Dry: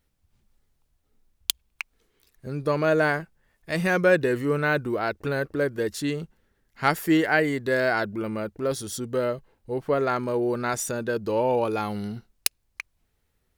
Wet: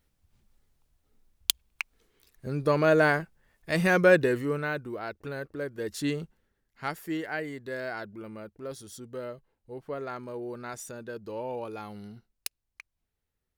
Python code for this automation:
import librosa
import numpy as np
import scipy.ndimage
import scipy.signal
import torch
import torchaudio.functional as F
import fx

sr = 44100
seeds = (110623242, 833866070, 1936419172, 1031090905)

y = fx.gain(x, sr, db=fx.line((4.18, 0.0), (4.8, -9.5), (5.73, -9.5), (6.07, -1.5), (6.95, -12.0)))